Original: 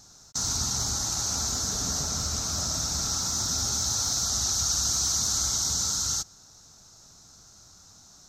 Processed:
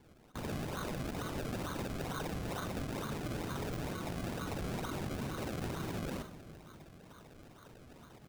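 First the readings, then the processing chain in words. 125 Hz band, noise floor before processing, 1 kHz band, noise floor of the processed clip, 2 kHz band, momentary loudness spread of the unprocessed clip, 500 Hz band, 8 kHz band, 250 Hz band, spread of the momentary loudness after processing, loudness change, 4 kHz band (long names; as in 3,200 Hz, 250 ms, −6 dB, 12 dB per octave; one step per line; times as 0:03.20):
−4.0 dB, −53 dBFS, −4.5 dB, −58 dBFS, −1.0 dB, 4 LU, +4.0 dB, −28.5 dB, +1.5 dB, 17 LU, −14.5 dB, −21.0 dB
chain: voice inversion scrambler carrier 3,800 Hz
spectral tilt −4 dB per octave
four-comb reverb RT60 1.9 s, combs from 27 ms, DRR 14.5 dB
in parallel at +0.5 dB: downward compressor, threshold −41 dBFS, peak gain reduction 18.5 dB
on the sum: high-pass filter 150 Hz 12 dB per octave
sample-and-hold swept by an LFO 33×, swing 100% 2.2 Hz
double-tracking delay 43 ms −13 dB
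on a send: delay with a low-pass on its return 152 ms, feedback 77%, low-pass 410 Hz, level −20.5 dB
on the sum: automatic gain control gain up to 5 dB
brickwall limiter −28 dBFS, peak gain reduction 8 dB
level −3.5 dB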